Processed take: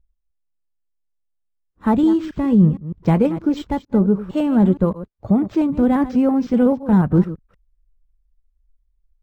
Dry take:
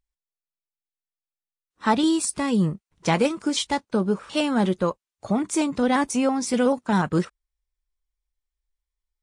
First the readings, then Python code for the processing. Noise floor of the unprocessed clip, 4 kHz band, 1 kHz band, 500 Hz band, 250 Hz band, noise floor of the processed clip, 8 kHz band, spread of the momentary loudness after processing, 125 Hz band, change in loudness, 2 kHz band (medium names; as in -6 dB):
under -85 dBFS, under -10 dB, -1.0 dB, +3.0 dB, +7.5 dB, -72 dBFS, under -20 dB, 7 LU, +9.5 dB, +5.5 dB, -6.0 dB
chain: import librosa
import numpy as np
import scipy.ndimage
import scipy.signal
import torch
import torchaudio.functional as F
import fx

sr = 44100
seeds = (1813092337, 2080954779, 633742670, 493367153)

y = fx.reverse_delay(x, sr, ms=154, wet_db=-14)
y = fx.tilt_eq(y, sr, slope=-4.5)
y = np.interp(np.arange(len(y)), np.arange(len(y))[::4], y[::4])
y = F.gain(torch.from_numpy(y), -2.0).numpy()